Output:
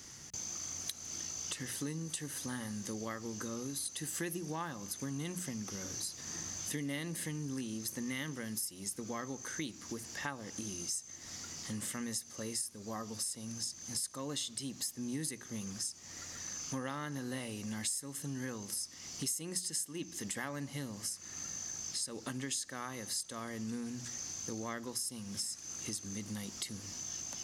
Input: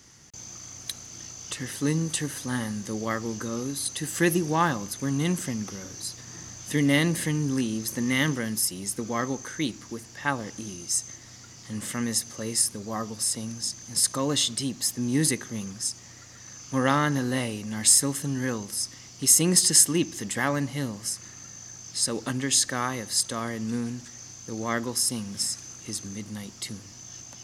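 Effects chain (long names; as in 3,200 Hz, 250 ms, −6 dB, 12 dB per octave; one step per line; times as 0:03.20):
high-shelf EQ 4,800 Hz +5 dB
mains-hum notches 60/120/180 Hz
downward compressor 5 to 1, threshold −38 dBFS, peak gain reduction 25 dB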